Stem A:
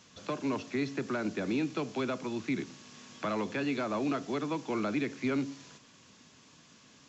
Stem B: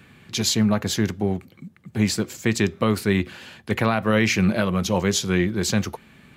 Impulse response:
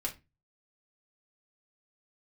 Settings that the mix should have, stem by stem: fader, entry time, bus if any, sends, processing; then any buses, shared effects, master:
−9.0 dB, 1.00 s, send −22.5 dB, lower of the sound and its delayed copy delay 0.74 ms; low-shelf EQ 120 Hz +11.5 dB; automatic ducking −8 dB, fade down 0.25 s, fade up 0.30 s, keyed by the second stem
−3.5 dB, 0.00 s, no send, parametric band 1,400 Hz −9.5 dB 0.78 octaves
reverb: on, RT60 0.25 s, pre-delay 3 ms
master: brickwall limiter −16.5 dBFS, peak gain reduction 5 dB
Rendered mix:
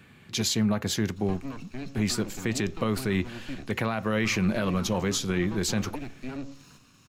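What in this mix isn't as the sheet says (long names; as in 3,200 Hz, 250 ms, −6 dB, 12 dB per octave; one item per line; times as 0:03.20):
stem A −9.0 dB → −0.5 dB
stem B: missing parametric band 1,400 Hz −9.5 dB 0.78 octaves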